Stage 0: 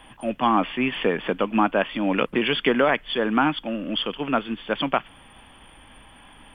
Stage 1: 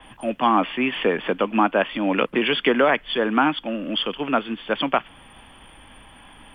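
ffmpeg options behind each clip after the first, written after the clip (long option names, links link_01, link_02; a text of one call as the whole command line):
ffmpeg -i in.wav -filter_complex "[0:a]acrossover=split=180|820|1600[link_01][link_02][link_03][link_04];[link_01]acompressor=threshold=-46dB:ratio=6[link_05];[link_05][link_02][link_03][link_04]amix=inputs=4:normalize=0,adynamicequalizer=threshold=0.00708:dfrequency=5300:dqfactor=0.7:tfrequency=5300:tqfactor=0.7:attack=5:release=100:ratio=0.375:range=2:mode=cutabove:tftype=highshelf,volume=2dB" out.wav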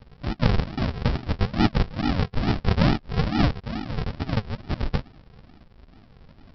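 ffmpeg -i in.wav -af "flanger=delay=2.3:depth=8.5:regen=-44:speed=1.9:shape=sinusoidal,aresample=11025,acrusher=samples=29:mix=1:aa=0.000001:lfo=1:lforange=17.4:lforate=2.3,aresample=44100,volume=2dB" out.wav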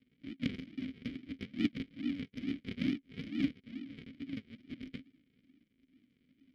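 ffmpeg -i in.wav -filter_complex "[0:a]aeval=exprs='0.501*(cos(1*acos(clip(val(0)/0.501,-1,1)))-cos(1*PI/2))+0.1*(cos(3*acos(clip(val(0)/0.501,-1,1)))-cos(3*PI/2))+0.00708*(cos(4*acos(clip(val(0)/0.501,-1,1)))-cos(4*PI/2))':channel_layout=same,acrusher=bits=4:mode=log:mix=0:aa=0.000001,asplit=3[link_01][link_02][link_03];[link_01]bandpass=frequency=270:width_type=q:width=8,volume=0dB[link_04];[link_02]bandpass=frequency=2290:width_type=q:width=8,volume=-6dB[link_05];[link_03]bandpass=frequency=3010:width_type=q:width=8,volume=-9dB[link_06];[link_04][link_05][link_06]amix=inputs=3:normalize=0,volume=3dB" out.wav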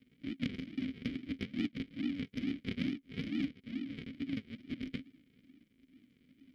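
ffmpeg -i in.wav -af "acompressor=threshold=-37dB:ratio=6,volume=5dB" out.wav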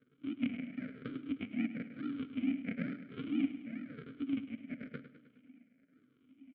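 ffmpeg -i in.wav -filter_complex "[0:a]afftfilt=real='re*pow(10,12/40*sin(2*PI*(0.59*log(max(b,1)*sr/1024/100)/log(2)-(-1)*(pts-256)/sr)))':imag='im*pow(10,12/40*sin(2*PI*(0.59*log(max(b,1)*sr/1024/100)/log(2)-(-1)*(pts-256)/sr)))':win_size=1024:overlap=0.75,highpass=190,equalizer=frequency=190:width_type=q:width=4:gain=-4,equalizer=frequency=360:width_type=q:width=4:gain=-7,equalizer=frequency=640:width_type=q:width=4:gain=4,equalizer=frequency=920:width_type=q:width=4:gain=-7,equalizer=frequency=1400:width_type=q:width=4:gain=7,equalizer=frequency=1900:width_type=q:width=4:gain=-7,lowpass=frequency=2300:width=0.5412,lowpass=frequency=2300:width=1.3066,asplit=2[link_01][link_02];[link_02]aecho=0:1:104|208|312|416|520|624|728:0.237|0.14|0.0825|0.0487|0.0287|0.017|0.01[link_03];[link_01][link_03]amix=inputs=2:normalize=0,volume=1dB" out.wav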